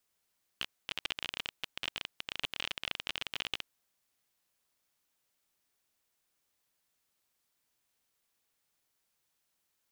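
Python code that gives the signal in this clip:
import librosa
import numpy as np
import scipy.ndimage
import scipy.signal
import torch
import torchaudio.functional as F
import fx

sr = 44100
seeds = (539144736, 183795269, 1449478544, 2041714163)

y = fx.geiger_clicks(sr, seeds[0], length_s=3.07, per_s=29.0, level_db=-18.0)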